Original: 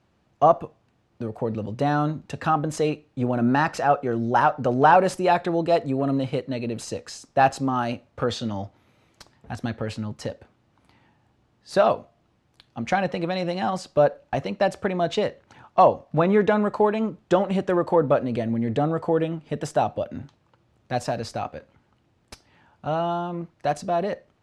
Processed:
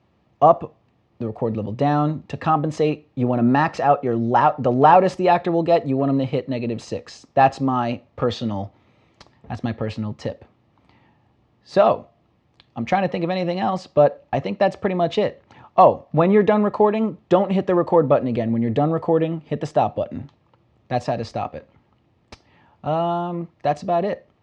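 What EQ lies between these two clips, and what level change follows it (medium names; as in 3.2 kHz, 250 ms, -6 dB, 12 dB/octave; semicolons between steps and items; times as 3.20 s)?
high-pass 46 Hz; distance through air 130 m; band-stop 1.5 kHz, Q 6.1; +4.0 dB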